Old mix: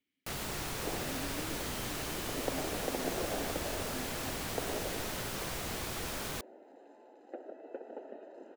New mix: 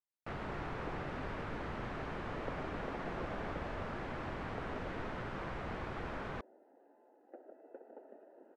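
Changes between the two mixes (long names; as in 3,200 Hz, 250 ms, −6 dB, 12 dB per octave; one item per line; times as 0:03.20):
speech: muted
second sound −8.0 dB
master: add Chebyshev low-pass filter 1,500 Hz, order 2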